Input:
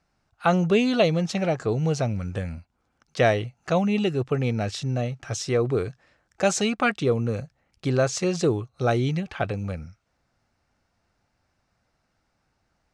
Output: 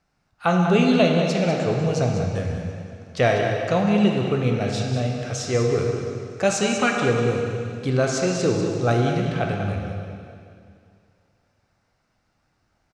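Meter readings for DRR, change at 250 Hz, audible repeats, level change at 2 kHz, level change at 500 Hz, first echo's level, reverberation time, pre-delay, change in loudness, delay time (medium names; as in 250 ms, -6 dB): 0.0 dB, +3.5 dB, 1, +3.0 dB, +3.0 dB, -9.0 dB, 2.4 s, 6 ms, +3.0 dB, 195 ms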